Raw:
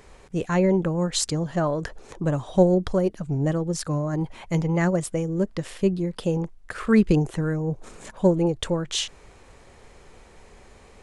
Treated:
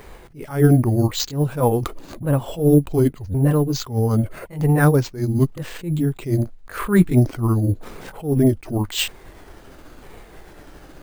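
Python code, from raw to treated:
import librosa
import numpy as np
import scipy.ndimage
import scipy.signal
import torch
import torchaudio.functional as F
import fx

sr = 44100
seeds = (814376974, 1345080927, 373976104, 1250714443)

y = fx.pitch_ramps(x, sr, semitones=-8.0, every_ms=1114)
y = np.repeat(scipy.signal.resample_poly(y, 1, 4), 4)[:len(y)]
y = fx.attack_slew(y, sr, db_per_s=170.0)
y = y * 10.0 ** (8.5 / 20.0)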